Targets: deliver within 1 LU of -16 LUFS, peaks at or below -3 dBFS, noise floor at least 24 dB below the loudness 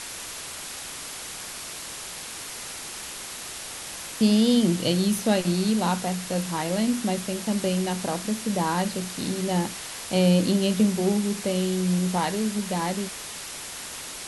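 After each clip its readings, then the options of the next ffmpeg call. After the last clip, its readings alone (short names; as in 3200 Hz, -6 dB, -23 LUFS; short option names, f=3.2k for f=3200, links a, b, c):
noise floor -37 dBFS; noise floor target -50 dBFS; loudness -26.0 LUFS; peak -9.5 dBFS; loudness target -16.0 LUFS
-> -af "afftdn=nr=13:nf=-37"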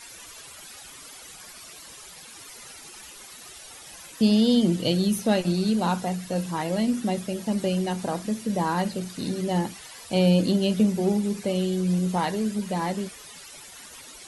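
noise floor -45 dBFS; noise floor target -49 dBFS
-> -af "afftdn=nr=6:nf=-45"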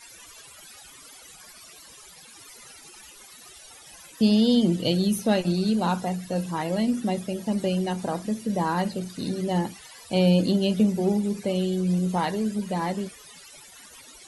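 noise floor -48 dBFS; noise floor target -49 dBFS
-> -af "afftdn=nr=6:nf=-48"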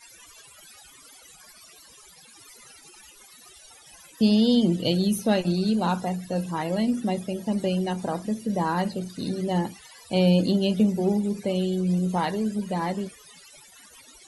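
noise floor -51 dBFS; loudness -25.0 LUFS; peak -10.0 dBFS; loudness target -16.0 LUFS
-> -af "volume=9dB,alimiter=limit=-3dB:level=0:latency=1"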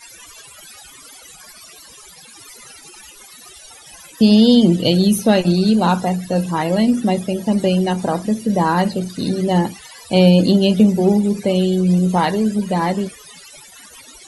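loudness -16.0 LUFS; peak -3.0 dBFS; noise floor -42 dBFS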